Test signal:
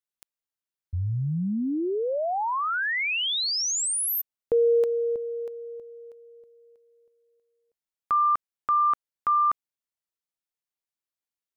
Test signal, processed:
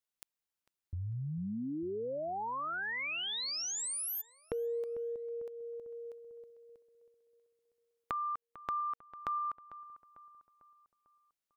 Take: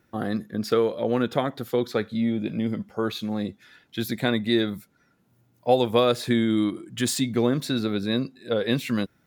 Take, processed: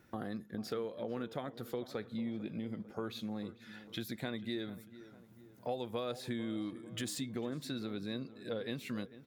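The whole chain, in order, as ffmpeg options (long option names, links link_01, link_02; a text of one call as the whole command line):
ffmpeg -i in.wav -filter_complex "[0:a]acompressor=threshold=-40dB:ratio=3:attack=6.3:release=504:knee=1:detection=peak,asplit=2[link_01][link_02];[link_02]adelay=448,lowpass=frequency=1900:poles=1,volume=-15dB,asplit=2[link_03][link_04];[link_04]adelay=448,lowpass=frequency=1900:poles=1,volume=0.52,asplit=2[link_05][link_06];[link_06]adelay=448,lowpass=frequency=1900:poles=1,volume=0.52,asplit=2[link_07][link_08];[link_08]adelay=448,lowpass=frequency=1900:poles=1,volume=0.52,asplit=2[link_09][link_10];[link_10]adelay=448,lowpass=frequency=1900:poles=1,volume=0.52[link_11];[link_03][link_05][link_07][link_09][link_11]amix=inputs=5:normalize=0[link_12];[link_01][link_12]amix=inputs=2:normalize=0" out.wav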